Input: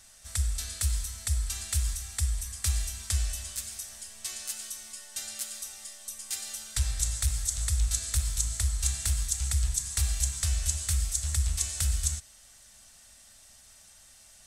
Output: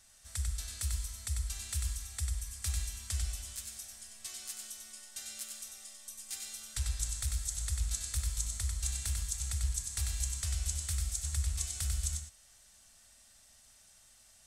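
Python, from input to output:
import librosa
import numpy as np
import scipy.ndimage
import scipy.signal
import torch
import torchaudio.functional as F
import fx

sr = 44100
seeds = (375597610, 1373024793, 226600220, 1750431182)

y = x + 10.0 ** (-5.0 / 20.0) * np.pad(x, (int(95 * sr / 1000.0), 0))[:len(x)]
y = y * librosa.db_to_amplitude(-7.5)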